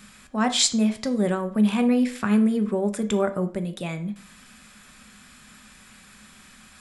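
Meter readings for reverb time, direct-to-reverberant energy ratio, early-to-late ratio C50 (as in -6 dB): 0.50 s, 8.0 dB, 14.5 dB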